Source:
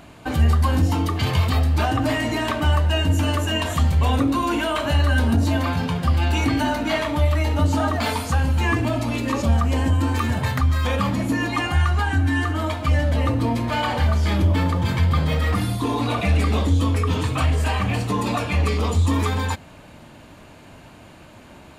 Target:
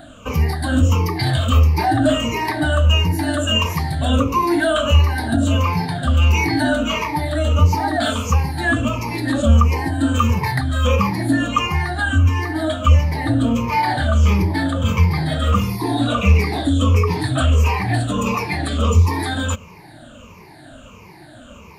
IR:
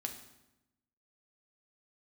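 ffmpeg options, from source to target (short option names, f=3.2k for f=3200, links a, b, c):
-af "afftfilt=real='re*pow(10,20/40*sin(2*PI*(0.81*log(max(b,1)*sr/1024/100)/log(2)-(-1.5)*(pts-256)/sr)))':imag='im*pow(10,20/40*sin(2*PI*(0.81*log(max(b,1)*sr/1024/100)/log(2)-(-1.5)*(pts-256)/sr)))':win_size=1024:overlap=0.75,volume=-1dB"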